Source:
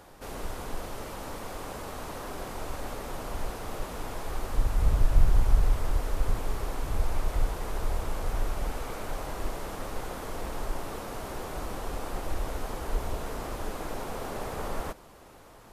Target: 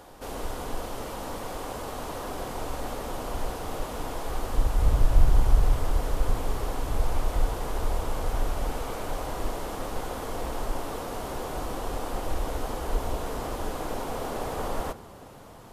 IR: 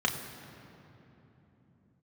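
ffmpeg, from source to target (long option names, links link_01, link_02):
-filter_complex "[0:a]asplit=2[link_01][link_02];[1:a]atrim=start_sample=2205,lowpass=3200[link_03];[link_02][link_03]afir=irnorm=-1:irlink=0,volume=-19dB[link_04];[link_01][link_04]amix=inputs=2:normalize=0,volume=2.5dB"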